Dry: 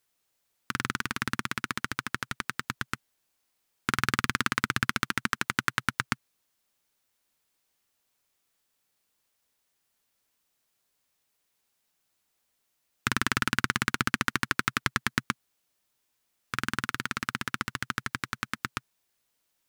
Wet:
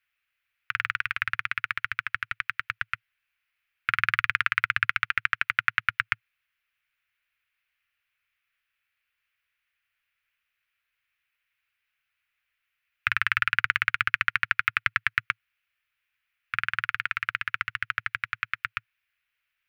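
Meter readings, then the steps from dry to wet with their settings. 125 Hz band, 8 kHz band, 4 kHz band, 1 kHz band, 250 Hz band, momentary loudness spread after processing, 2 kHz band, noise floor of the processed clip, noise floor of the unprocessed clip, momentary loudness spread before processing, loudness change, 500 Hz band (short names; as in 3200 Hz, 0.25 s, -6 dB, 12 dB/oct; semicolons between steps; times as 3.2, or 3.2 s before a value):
-8.5 dB, under -15 dB, -1.5 dB, +0.5 dB, under -20 dB, 9 LU, +5.5 dB, -82 dBFS, -77 dBFS, 8 LU, +3.5 dB, under -15 dB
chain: EQ curve 110 Hz 0 dB, 230 Hz -29 dB, 460 Hz -12 dB, 890 Hz -9 dB, 1400 Hz +8 dB, 2500 Hz +13 dB, 3700 Hz -2 dB, 7800 Hz -17 dB, 12000 Hz -7 dB; gain -4.5 dB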